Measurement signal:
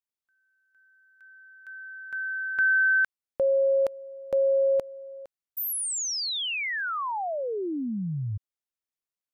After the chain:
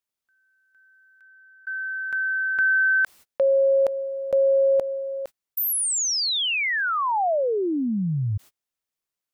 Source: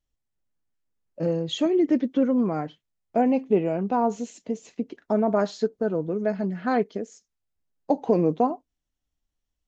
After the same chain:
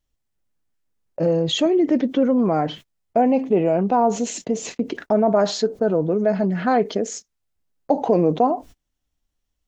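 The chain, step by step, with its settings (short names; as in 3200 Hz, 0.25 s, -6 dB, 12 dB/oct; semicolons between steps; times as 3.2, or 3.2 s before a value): dynamic EQ 670 Hz, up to +5 dB, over -37 dBFS, Q 1.4; gate -46 dBFS, range -35 dB; fast leveller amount 50%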